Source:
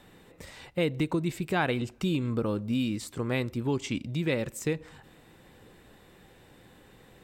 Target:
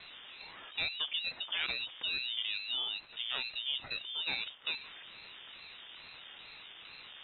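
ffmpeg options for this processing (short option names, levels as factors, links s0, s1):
-af "aeval=exprs='val(0)+0.5*0.015*sgn(val(0))':c=same,lowpass=f=3000:t=q:w=0.5098,lowpass=f=3000:t=q:w=0.6013,lowpass=f=3000:t=q:w=0.9,lowpass=f=3000:t=q:w=2.563,afreqshift=-3500,aeval=exprs='val(0)*sin(2*PI*430*n/s+430*0.65/2.3*sin(2*PI*2.3*n/s))':c=same,volume=0.473"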